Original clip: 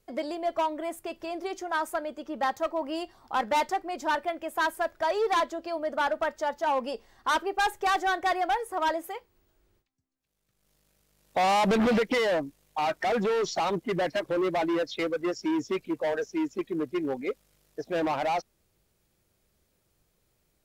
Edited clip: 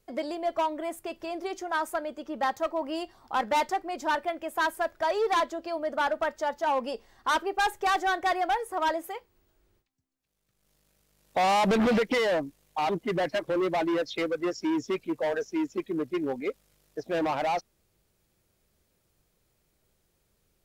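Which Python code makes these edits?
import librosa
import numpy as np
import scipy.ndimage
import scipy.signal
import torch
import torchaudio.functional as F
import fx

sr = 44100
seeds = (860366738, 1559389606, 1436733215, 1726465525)

y = fx.edit(x, sr, fx.cut(start_s=12.89, length_s=0.81), tone=tone)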